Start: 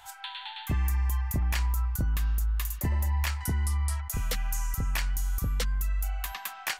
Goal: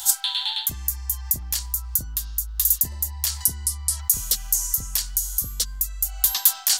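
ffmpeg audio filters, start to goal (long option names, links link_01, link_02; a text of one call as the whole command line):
ffmpeg -i in.wav -af "acontrast=88,alimiter=limit=-18.5dB:level=0:latency=1:release=112,areverse,acompressor=threshold=-32dB:ratio=10,areverse,aexciter=amount=7.3:drive=7.7:freq=3500" out.wav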